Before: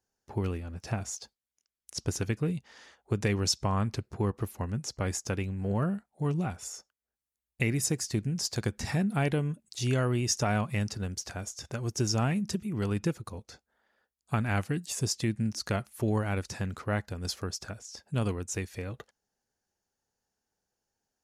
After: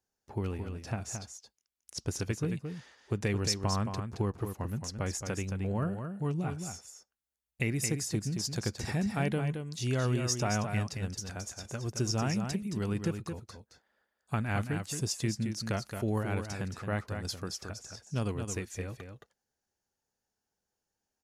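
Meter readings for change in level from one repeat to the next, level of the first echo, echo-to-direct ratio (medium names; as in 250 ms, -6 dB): no regular repeats, -7.0 dB, -7.0 dB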